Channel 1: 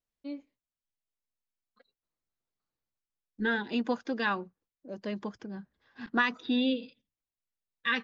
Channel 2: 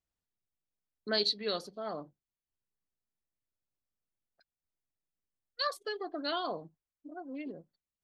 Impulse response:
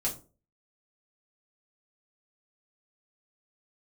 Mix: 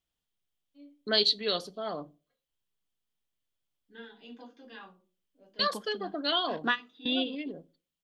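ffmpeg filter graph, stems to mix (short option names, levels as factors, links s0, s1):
-filter_complex "[0:a]highpass=210,adelay=500,volume=0.75,asplit=2[s0][s1];[s1]volume=0.0841[s2];[1:a]volume=1.26,asplit=3[s3][s4][s5];[s4]volume=0.1[s6];[s5]apad=whole_len=376305[s7];[s0][s7]sidechaingate=range=0.0224:threshold=0.00224:ratio=16:detection=peak[s8];[2:a]atrim=start_sample=2205[s9];[s2][s6]amix=inputs=2:normalize=0[s10];[s10][s9]afir=irnorm=-1:irlink=0[s11];[s8][s3][s11]amix=inputs=3:normalize=0,equalizer=f=3200:t=o:w=0.41:g=10.5"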